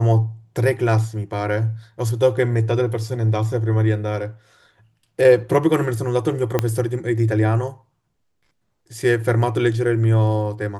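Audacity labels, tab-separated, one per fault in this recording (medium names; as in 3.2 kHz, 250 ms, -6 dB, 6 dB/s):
6.590000	6.590000	pop -5 dBFS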